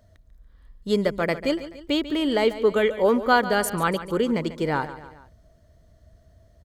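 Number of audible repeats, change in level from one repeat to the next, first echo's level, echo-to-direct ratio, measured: 3, -6.0 dB, -14.0 dB, -12.5 dB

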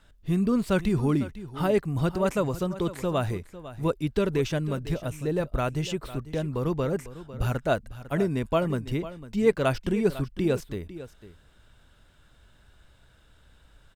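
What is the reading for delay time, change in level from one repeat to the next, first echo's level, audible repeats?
0.501 s, no steady repeat, -15.0 dB, 1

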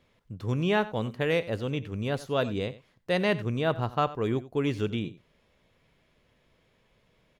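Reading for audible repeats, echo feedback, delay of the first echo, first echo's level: 1, no steady repeat, 90 ms, -17.0 dB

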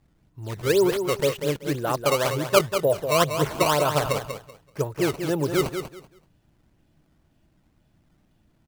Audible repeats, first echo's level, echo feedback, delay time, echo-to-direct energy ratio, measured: 3, -8.0 dB, 22%, 0.191 s, -8.0 dB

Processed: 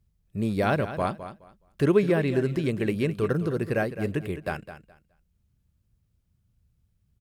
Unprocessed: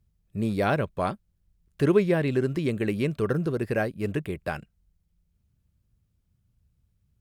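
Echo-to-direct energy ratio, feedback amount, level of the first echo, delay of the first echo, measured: -12.0 dB, 20%, -12.0 dB, 0.21 s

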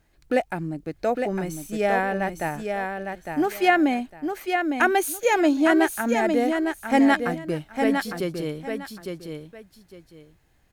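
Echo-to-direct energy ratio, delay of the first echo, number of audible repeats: -5.5 dB, 0.856 s, 2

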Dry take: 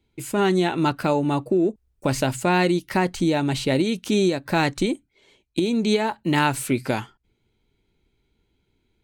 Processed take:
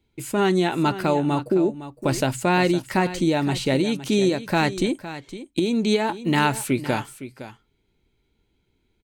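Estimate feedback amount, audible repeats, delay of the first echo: no steady repeat, 1, 0.511 s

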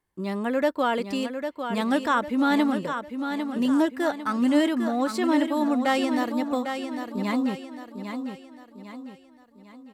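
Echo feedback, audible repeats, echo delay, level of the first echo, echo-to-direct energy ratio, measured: 43%, 4, 0.801 s, -7.5 dB, -6.5 dB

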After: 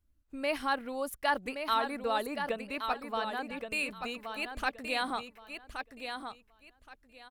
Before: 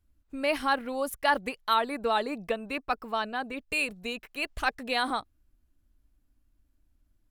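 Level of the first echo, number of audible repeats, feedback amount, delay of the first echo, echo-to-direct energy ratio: -7.0 dB, 3, 21%, 1.123 s, -7.0 dB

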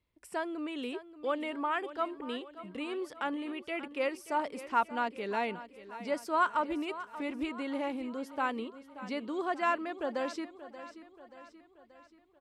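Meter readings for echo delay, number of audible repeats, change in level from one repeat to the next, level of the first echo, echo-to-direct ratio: 0.581 s, 4, -5.5 dB, -14.5 dB, -13.0 dB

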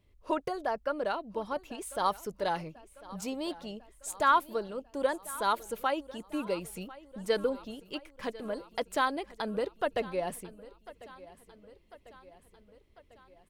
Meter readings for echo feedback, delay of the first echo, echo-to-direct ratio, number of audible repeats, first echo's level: 58%, 1.047 s, -17.0 dB, 4, -19.0 dB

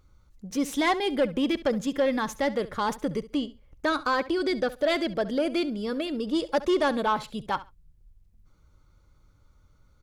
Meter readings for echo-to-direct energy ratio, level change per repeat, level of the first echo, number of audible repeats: -17.0 dB, -15.0 dB, -17.0 dB, 2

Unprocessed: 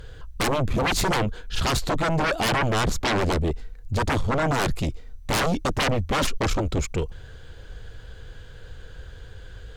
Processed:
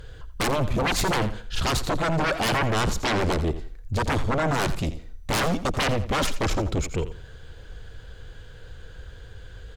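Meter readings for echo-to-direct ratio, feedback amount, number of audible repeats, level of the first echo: -12.5 dB, 26%, 2, -13.0 dB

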